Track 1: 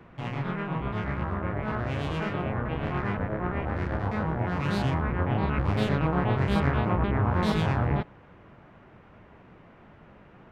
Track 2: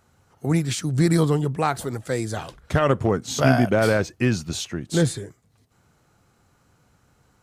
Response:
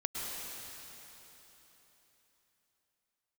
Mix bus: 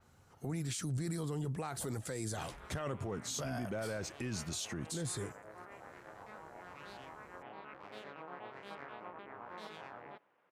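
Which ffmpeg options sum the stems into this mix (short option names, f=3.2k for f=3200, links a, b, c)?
-filter_complex "[0:a]highpass=460,adelay=2150,volume=-17.5dB[a];[1:a]acompressor=threshold=-27dB:ratio=3,volume=-4dB[b];[a][b]amix=inputs=2:normalize=0,adynamicequalizer=threshold=0.00158:dfrequency=9300:dqfactor=0.71:tfrequency=9300:tqfactor=0.71:attack=5:release=100:ratio=0.375:range=3.5:mode=boostabove:tftype=bell,alimiter=level_in=6.5dB:limit=-24dB:level=0:latency=1:release=13,volume=-6.5dB"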